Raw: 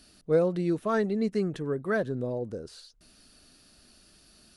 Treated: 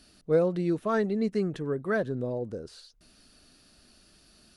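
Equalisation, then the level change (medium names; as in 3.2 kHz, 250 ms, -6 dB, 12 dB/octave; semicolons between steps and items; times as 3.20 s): treble shelf 7.7 kHz -4.5 dB; 0.0 dB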